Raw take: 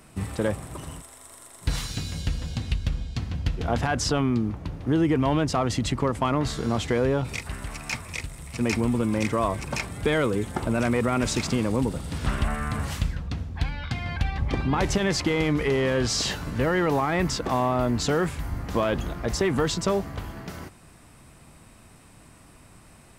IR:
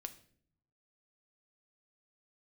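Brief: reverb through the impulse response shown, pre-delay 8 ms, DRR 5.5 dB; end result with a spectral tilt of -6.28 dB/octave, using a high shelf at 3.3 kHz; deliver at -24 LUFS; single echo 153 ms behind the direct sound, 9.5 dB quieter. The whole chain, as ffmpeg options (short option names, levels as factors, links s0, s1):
-filter_complex "[0:a]highshelf=f=3300:g=-8.5,aecho=1:1:153:0.335,asplit=2[s0][s1];[1:a]atrim=start_sample=2205,adelay=8[s2];[s1][s2]afir=irnorm=-1:irlink=0,volume=0.841[s3];[s0][s3]amix=inputs=2:normalize=0,volume=1.12"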